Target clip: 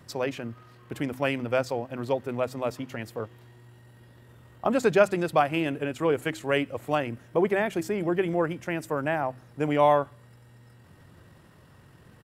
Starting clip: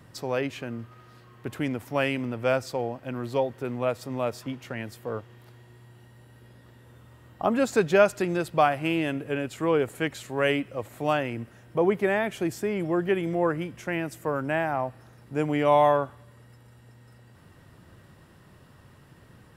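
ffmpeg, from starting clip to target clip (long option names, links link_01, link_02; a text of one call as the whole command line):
ffmpeg -i in.wav -af "bandreject=frequency=63.73:width_type=h:width=4,bandreject=frequency=127.46:width_type=h:width=4,bandreject=frequency=191.19:width_type=h:width=4,bandreject=frequency=254.92:width_type=h:width=4,bandreject=frequency=318.65:width_type=h:width=4,atempo=1.6" out.wav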